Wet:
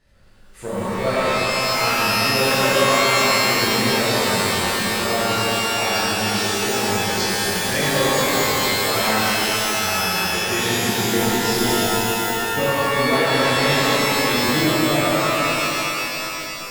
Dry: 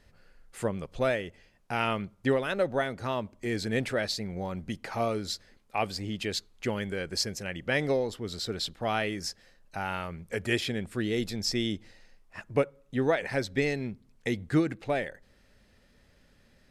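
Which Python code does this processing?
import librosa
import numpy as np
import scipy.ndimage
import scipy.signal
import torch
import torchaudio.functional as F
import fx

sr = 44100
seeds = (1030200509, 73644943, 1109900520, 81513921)

p1 = x + fx.echo_alternate(x, sr, ms=115, hz=1500.0, feedback_pct=82, wet_db=-5.0, dry=0)
p2 = fx.rev_shimmer(p1, sr, seeds[0], rt60_s=3.0, semitones=12, shimmer_db=-2, drr_db=-11.5)
y = p2 * librosa.db_to_amplitude(-5.0)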